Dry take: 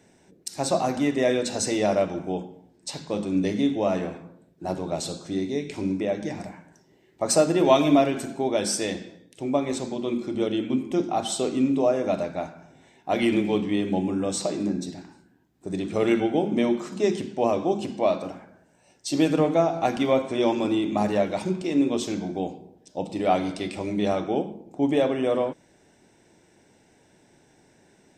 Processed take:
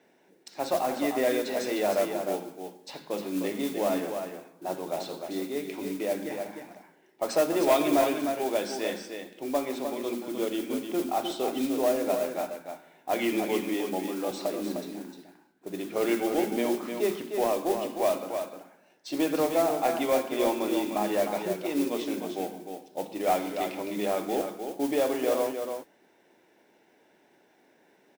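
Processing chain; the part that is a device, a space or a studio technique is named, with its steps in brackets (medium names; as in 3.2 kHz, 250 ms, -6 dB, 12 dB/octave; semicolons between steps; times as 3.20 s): carbon microphone (band-pass 320–3400 Hz; saturation -13 dBFS, distortion -20 dB; modulation noise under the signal 16 dB); 13.74–14.31 s: high-pass 230 Hz; delay 305 ms -6.5 dB; trim -2 dB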